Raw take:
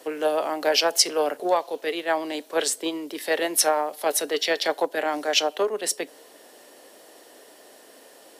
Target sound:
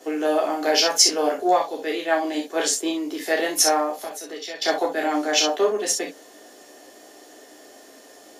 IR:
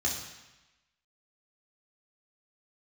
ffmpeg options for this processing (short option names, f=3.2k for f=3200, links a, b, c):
-filter_complex "[0:a]asettb=1/sr,asplit=3[a][b][c];[a]atrim=end=4.024[d];[b]atrim=start=4.02:end=4.62,asetpts=PTS-STARTPTS,afade=t=in:d=0.004:c=qsin,afade=t=out:st=0.596:d=0.004:c=qsin,acompressor=threshold=-32dB:ratio=16[e];[c]atrim=start=4.616[f];[d][e]acrossfade=d=0.004:c1=hsin:c2=qsin[g];[g][f]acrossfade=d=0.004:c1=qsin:c2=hsin[h];[1:a]atrim=start_sample=2205,atrim=end_sample=3528[i];[h][i]afir=irnorm=-1:irlink=0,volume=-4dB"